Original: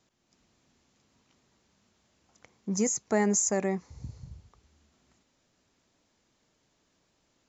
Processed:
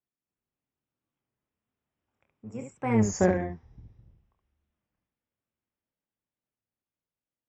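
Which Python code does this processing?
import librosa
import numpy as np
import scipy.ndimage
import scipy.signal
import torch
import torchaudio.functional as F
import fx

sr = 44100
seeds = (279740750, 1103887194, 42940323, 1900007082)

y = fx.octave_divider(x, sr, octaves=1, level_db=-5.0)
y = fx.doppler_pass(y, sr, speed_mps=31, closest_m=2.3, pass_at_s=3.16)
y = scipy.signal.savgol_filter(y, 25, 4, mode='constant')
y = fx.room_early_taps(y, sr, ms=(27, 71), db=(-6.5, -5.0))
y = fx.cheby_harmonics(y, sr, harmonics=(7,), levels_db=(-35,), full_scale_db=-18.5)
y = fx.record_warp(y, sr, rpm=33.33, depth_cents=160.0)
y = F.gain(torch.from_numpy(y), 8.0).numpy()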